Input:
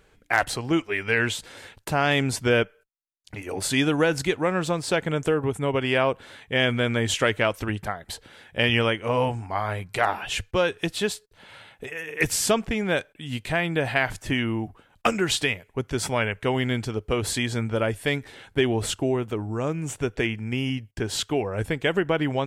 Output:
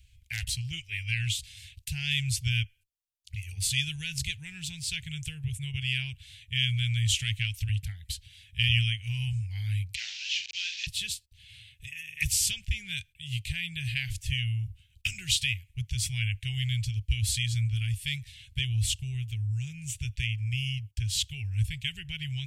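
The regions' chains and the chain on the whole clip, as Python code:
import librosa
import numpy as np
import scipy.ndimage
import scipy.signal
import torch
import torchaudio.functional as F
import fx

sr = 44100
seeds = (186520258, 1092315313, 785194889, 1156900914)

y = fx.chain(x, sr, fx.delta_mod(bps=32000, step_db=-26.0),
    fx.highpass(hz=1300.0, slope=12),
    fx.doubler(ms=43.0, db=-7.5), at=(9.95, 10.87))
y = scipy.signal.sosfilt(scipy.signal.ellip(3, 1.0, 40, [120.0, 2600.0], 'bandstop', fs=sr, output='sos'), y)
y = fx.peak_eq(y, sr, hz=67.0, db=12.5, octaves=0.85)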